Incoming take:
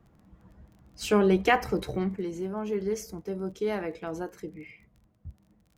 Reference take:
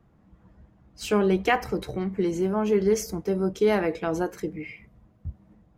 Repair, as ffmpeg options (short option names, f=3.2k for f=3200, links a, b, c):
-af "adeclick=t=4,asetnsamples=n=441:p=0,asendcmd='2.16 volume volume 8dB',volume=0dB"